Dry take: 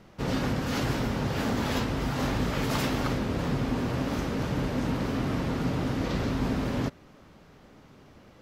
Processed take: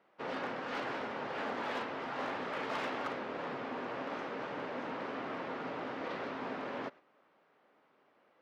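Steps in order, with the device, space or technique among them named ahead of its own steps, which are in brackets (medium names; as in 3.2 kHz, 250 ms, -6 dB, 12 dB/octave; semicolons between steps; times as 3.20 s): walkie-talkie (band-pass 500–2400 Hz; hard clipper -27 dBFS, distortion -24 dB; gate -49 dBFS, range -7 dB); trim -3 dB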